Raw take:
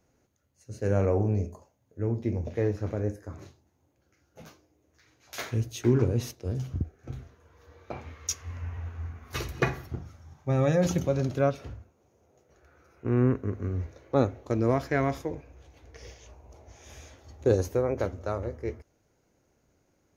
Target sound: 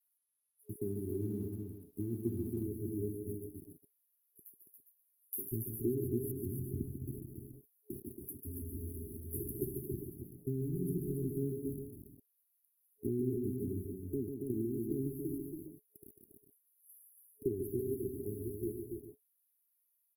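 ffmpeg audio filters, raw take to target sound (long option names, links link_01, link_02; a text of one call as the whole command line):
ffmpeg -i in.wav -filter_complex "[0:a]adynamicequalizer=threshold=0.001:dfrequency=6200:dqfactor=3.8:tfrequency=6200:tqfactor=3.8:attack=5:release=100:ratio=0.375:range=2:mode=cutabove:tftype=bell,acrossover=split=1900[link_01][link_02];[link_01]aeval=exprs='val(0)*gte(abs(val(0)),0.0119)':channel_layout=same[link_03];[link_03][link_02]amix=inputs=2:normalize=0,asettb=1/sr,asplit=3[link_04][link_05][link_06];[link_04]atrim=end=5.794[link_07];[link_05]atrim=start=5.79:end=6.38,asetpts=PTS-STARTPTS,afade=type=in:duration=0.004:curve=qsin,afade=type=out:start_time=0.586:duration=0.004:curve=qsin,aeval=exprs='val(0)+0.0158*sin(2*PI*4900*n/s)':channel_layout=same[link_08];[link_06]atrim=start=6.376[link_09];[link_07][link_08]acrossfade=duration=0.004:curve1=hsin:curve2=qsin[link_10];[link_10][link_09]acrossfade=duration=0.004:curve1=qsin:curve2=hsin,acompressor=threshold=-35dB:ratio=4,highpass=frequency=290:poles=1,highshelf=frequency=2200:gain=6,asettb=1/sr,asplit=3[link_11][link_12][link_13];[link_11]atrim=end=10.624[link_14];[link_12]atrim=start=10.62:end=11.24,asetpts=PTS-STARTPTS,afade=type=in:duration=0.004:curve=qsin,afade=type=out:start_time=0.616:duration=0.004:curve=qsin,bandreject=frequency=50:width_type=h:width=6,bandreject=frequency=100:width_type=h:width=6,bandreject=frequency=150:width_type=h:width=6,bandreject=frequency=200:width_type=h:width=6,bandreject=frequency=250:width_type=h:width=6,bandreject=frequency=300:width_type=h:width=6,bandreject=frequency=350:width_type=h:width=6,bandreject=frequency=400:width_type=h:width=6,bandreject=frequency=450:width_type=h:width=6[link_15];[link_13]atrim=start=11.236[link_16];[link_14][link_15]acrossfade=duration=0.004:curve1=hsin:curve2=qsin[link_17];[link_17][link_16]acrossfade=duration=0.004:curve1=qsin:curve2=hsin,aecho=1:1:145|221|279|400|407:0.473|0.126|0.562|0.141|0.251,afftfilt=real='re*(1-between(b*sr/4096,420,10000))':imag='im*(1-between(b*sr/4096,420,10000))':win_size=4096:overlap=0.75,volume=5.5dB" -ar 48000 -c:a libopus -b:a 20k out.opus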